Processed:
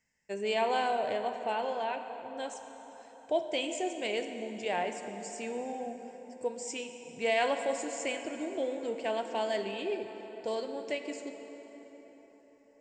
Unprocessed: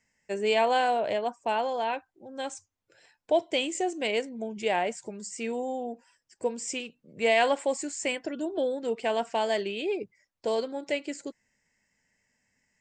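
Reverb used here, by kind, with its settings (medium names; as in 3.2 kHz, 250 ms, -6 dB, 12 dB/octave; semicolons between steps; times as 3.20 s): plate-style reverb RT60 4.7 s, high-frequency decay 0.6×, DRR 6 dB; trim -5.5 dB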